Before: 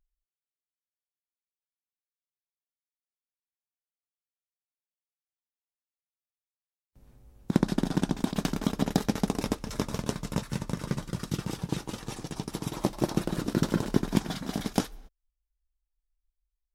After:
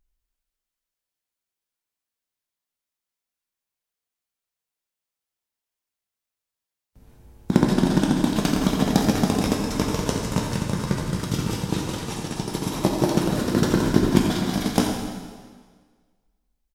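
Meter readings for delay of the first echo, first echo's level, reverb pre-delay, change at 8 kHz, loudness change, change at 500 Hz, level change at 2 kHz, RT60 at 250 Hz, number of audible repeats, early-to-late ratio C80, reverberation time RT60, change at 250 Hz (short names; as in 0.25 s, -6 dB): 86 ms, -10.5 dB, 5 ms, +8.5 dB, +8.0 dB, +8.5 dB, +8.5 dB, 1.5 s, 1, 3.5 dB, 1.6 s, +8.0 dB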